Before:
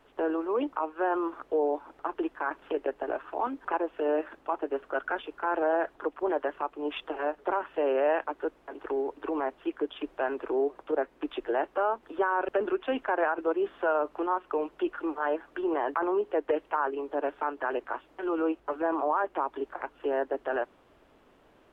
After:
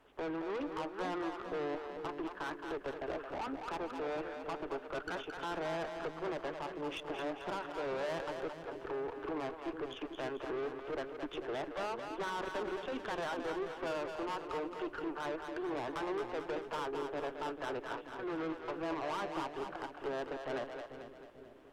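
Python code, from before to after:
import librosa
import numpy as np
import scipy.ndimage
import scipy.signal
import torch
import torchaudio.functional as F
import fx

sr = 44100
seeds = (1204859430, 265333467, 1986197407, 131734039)

y = fx.tube_stage(x, sr, drive_db=33.0, bias=0.4)
y = fx.echo_split(y, sr, split_hz=440.0, low_ms=444, high_ms=220, feedback_pct=52, wet_db=-6)
y = F.gain(torch.from_numpy(y), -2.5).numpy()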